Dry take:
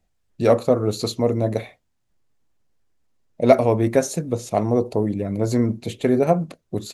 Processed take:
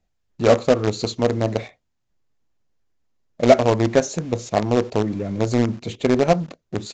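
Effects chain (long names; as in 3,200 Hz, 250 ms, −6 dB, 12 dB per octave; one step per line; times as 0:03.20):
in parallel at −12 dB: log-companded quantiser 2 bits
on the sum: downsampling to 16,000 Hz
level −2.5 dB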